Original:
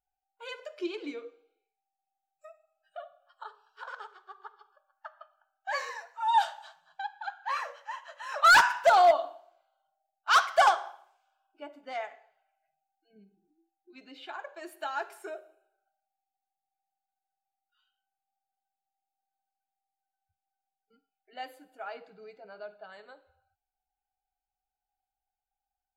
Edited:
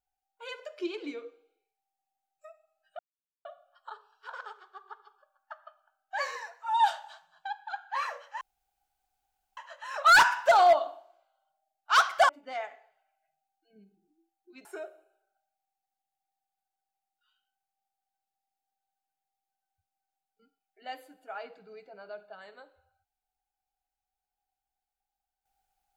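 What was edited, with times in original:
2.99 insert silence 0.46 s
7.95 insert room tone 1.16 s
10.67–11.69 cut
14.05–15.16 cut

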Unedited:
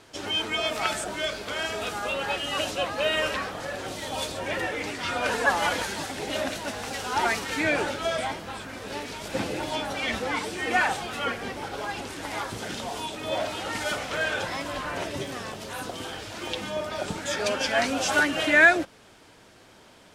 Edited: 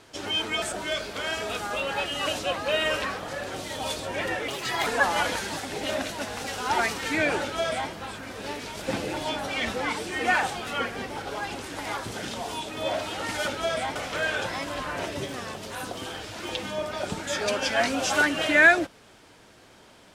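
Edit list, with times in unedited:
0.62–0.94 cut
4.8–5.33 speed 137%
7.89–8.37 copy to 13.94

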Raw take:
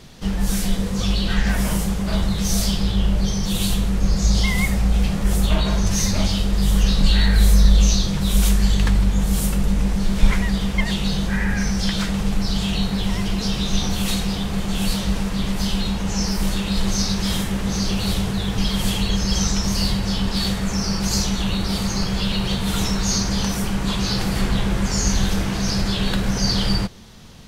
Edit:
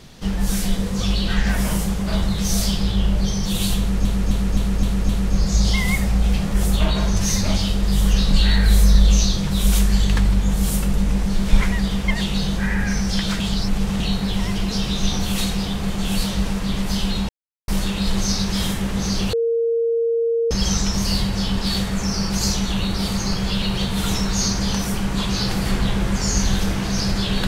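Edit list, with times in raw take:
3.79–4.05 loop, 6 plays
12.1–12.7 reverse
15.99–16.38 mute
18.03–19.21 bleep 462 Hz -16.5 dBFS

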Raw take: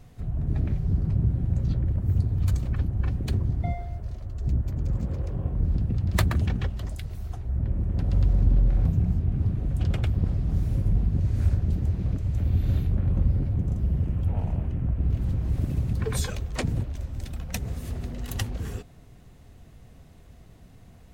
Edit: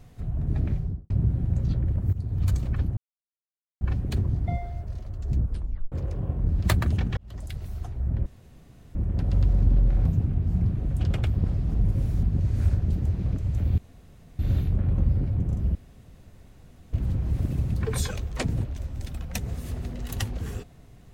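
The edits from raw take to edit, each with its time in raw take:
0.72–1.1 studio fade out
2.13–2.42 fade in, from -13.5 dB
2.97 insert silence 0.84 s
4.54 tape stop 0.54 s
5.75–6.08 cut
6.66–7.02 fade in
7.75 insert room tone 0.69 s
9.01–9.45 reverse
10.54–11.03 reverse
12.58 insert room tone 0.61 s
13.94–15.12 room tone

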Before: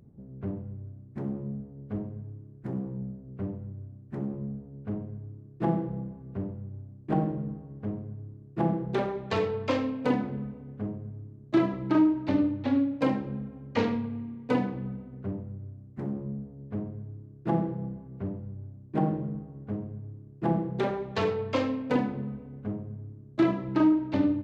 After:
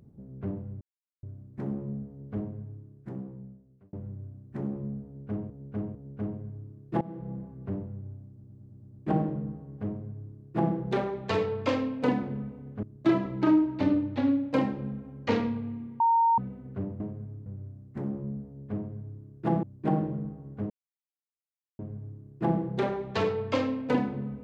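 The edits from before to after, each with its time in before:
0.81 insert silence 0.42 s
2.13–3.51 fade out
4.63–5.08 loop, 3 plays
5.69–6.09 fade in, from -22.5 dB
6.96 stutter 0.11 s, 7 plays
10.85–11.31 move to 15.48
14.48–14.86 bleep 921 Hz -19 dBFS
17.65–18.73 cut
19.8 insert silence 1.09 s

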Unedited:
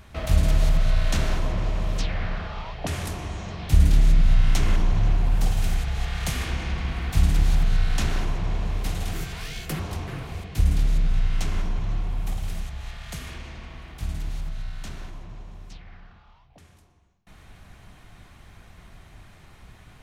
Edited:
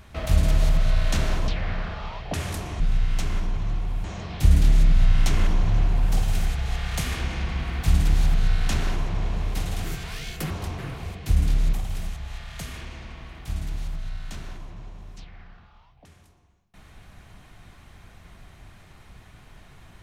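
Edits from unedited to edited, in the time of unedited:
1.48–2.01 cut
11.02–12.26 move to 3.33

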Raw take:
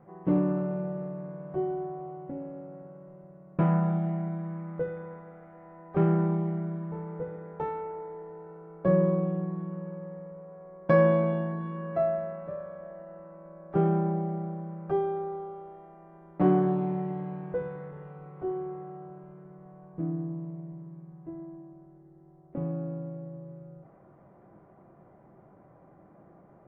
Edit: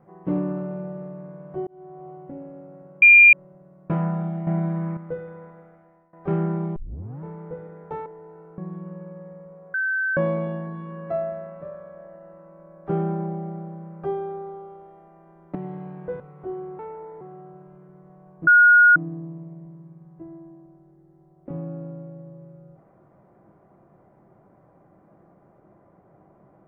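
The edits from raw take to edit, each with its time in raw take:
1.67–2.09 fade in
3.02 add tone 2400 Hz -7 dBFS 0.31 s
4.16–4.66 gain +9 dB
5.26–5.82 fade out, to -19.5 dB
6.45 tape start 0.47 s
7.75–8.17 move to 18.77
8.69–9.44 cut
10.6–11.03 bleep 1540 Hz -21 dBFS
16.41–17.01 cut
17.66–18.18 cut
20.03 add tone 1440 Hz -9.5 dBFS 0.49 s

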